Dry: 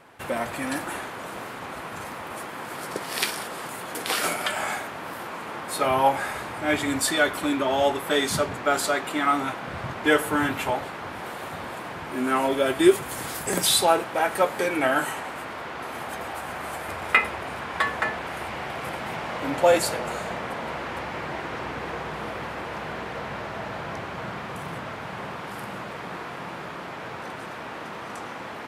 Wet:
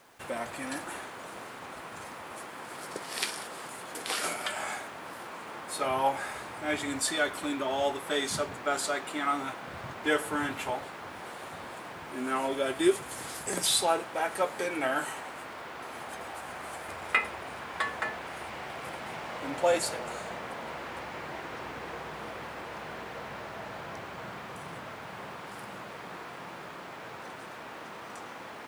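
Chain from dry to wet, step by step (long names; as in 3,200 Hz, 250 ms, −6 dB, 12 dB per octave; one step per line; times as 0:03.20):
low-pass filter 11,000 Hz 24 dB per octave
bass and treble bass −3 dB, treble +3 dB
bit reduction 9 bits
level −7 dB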